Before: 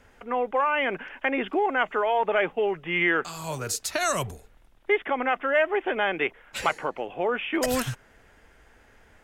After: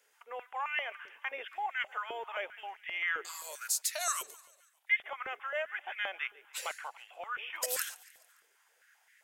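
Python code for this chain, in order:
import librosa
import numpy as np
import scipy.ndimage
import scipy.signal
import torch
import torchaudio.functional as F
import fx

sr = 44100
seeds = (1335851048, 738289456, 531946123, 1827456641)

p1 = fx.octave_divider(x, sr, octaves=1, level_db=-3.0)
p2 = np.diff(p1, prepend=0.0)
p3 = p2 + fx.echo_feedback(p2, sr, ms=143, feedback_pct=55, wet_db=-20.5, dry=0)
p4 = fx.filter_held_highpass(p3, sr, hz=7.6, low_hz=410.0, high_hz=1900.0)
y = F.gain(torch.from_numpy(p4), -1.5).numpy()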